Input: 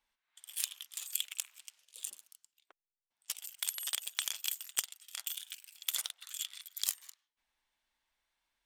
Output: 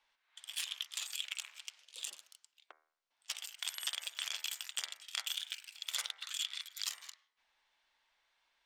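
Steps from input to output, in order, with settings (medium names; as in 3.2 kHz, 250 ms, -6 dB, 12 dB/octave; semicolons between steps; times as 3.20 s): three-band isolator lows -13 dB, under 400 Hz, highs -17 dB, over 6.2 kHz; de-hum 78.54 Hz, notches 30; peak limiter -29 dBFS, peak gain reduction 14 dB; trim +8 dB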